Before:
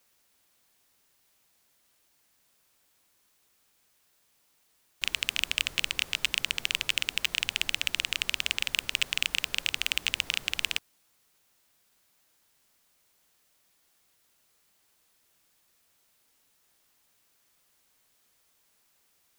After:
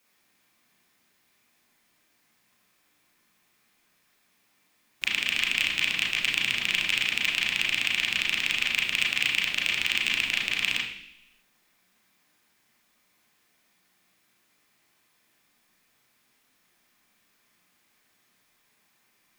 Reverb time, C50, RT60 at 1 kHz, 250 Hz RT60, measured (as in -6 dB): 0.70 s, 4.5 dB, 0.70 s, 0.85 s